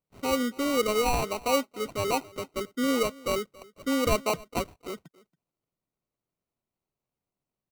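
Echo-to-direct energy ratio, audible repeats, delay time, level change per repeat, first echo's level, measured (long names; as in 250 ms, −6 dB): −22.5 dB, 1, 278 ms, repeats not evenly spaced, −22.5 dB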